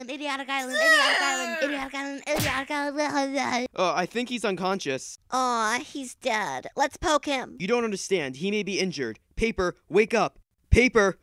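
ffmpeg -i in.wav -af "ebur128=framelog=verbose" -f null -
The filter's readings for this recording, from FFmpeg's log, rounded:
Integrated loudness:
  I:         -25.4 LUFS
  Threshold: -35.5 LUFS
Loudness range:
  LRA:         3.4 LU
  Threshold: -46.4 LUFS
  LRA low:   -27.4 LUFS
  LRA high:  -24.1 LUFS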